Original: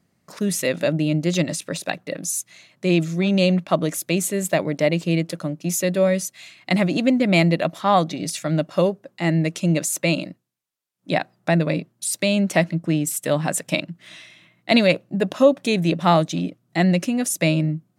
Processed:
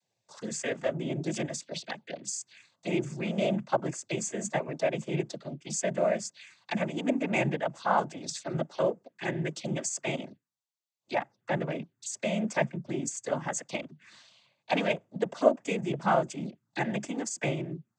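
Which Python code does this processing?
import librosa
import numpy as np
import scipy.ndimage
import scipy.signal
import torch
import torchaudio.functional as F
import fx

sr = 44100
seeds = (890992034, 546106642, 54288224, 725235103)

y = fx.low_shelf(x, sr, hz=380.0, db=-10.5)
y = fx.env_phaser(y, sr, low_hz=240.0, high_hz=4000.0, full_db=-24.0)
y = fx.noise_vocoder(y, sr, seeds[0], bands=16)
y = F.gain(torch.from_numpy(y), -4.5).numpy()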